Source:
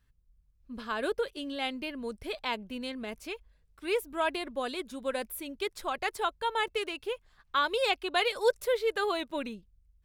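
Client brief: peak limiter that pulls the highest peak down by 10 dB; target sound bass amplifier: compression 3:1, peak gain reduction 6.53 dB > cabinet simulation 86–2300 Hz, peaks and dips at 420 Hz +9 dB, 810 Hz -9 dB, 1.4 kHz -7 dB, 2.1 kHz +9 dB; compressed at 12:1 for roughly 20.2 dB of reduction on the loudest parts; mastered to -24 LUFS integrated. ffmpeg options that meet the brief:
-af "acompressor=threshold=0.00891:ratio=12,alimiter=level_in=5.31:limit=0.0631:level=0:latency=1,volume=0.188,acompressor=threshold=0.00316:ratio=3,highpass=f=86:w=0.5412,highpass=f=86:w=1.3066,equalizer=f=420:t=q:w=4:g=9,equalizer=f=810:t=q:w=4:g=-9,equalizer=f=1400:t=q:w=4:g=-7,equalizer=f=2100:t=q:w=4:g=9,lowpass=f=2300:w=0.5412,lowpass=f=2300:w=1.3066,volume=22.4"

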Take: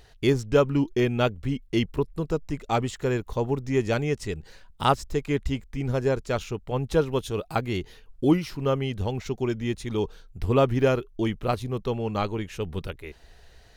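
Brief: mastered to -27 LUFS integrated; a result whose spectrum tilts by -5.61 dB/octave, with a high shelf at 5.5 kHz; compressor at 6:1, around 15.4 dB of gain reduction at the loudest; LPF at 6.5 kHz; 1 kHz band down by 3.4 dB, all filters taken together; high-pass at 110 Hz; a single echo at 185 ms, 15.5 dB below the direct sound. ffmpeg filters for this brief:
-af "highpass=110,lowpass=6500,equalizer=f=1000:t=o:g=-5,highshelf=f=5500:g=7,acompressor=threshold=0.0224:ratio=6,aecho=1:1:185:0.168,volume=3.55"

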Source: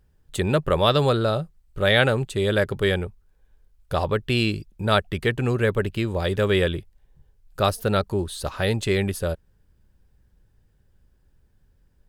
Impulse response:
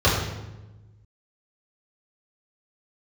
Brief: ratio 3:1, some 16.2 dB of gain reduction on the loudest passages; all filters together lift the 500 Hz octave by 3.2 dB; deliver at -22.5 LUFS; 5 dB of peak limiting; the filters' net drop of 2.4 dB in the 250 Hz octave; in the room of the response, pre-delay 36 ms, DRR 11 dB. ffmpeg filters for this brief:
-filter_complex "[0:a]equalizer=f=250:t=o:g=-6,equalizer=f=500:t=o:g=5.5,acompressor=threshold=0.0158:ratio=3,alimiter=level_in=1.12:limit=0.0631:level=0:latency=1,volume=0.891,asplit=2[s0][s1];[1:a]atrim=start_sample=2205,adelay=36[s2];[s1][s2]afir=irnorm=-1:irlink=0,volume=0.0282[s3];[s0][s3]amix=inputs=2:normalize=0,volume=4.47"

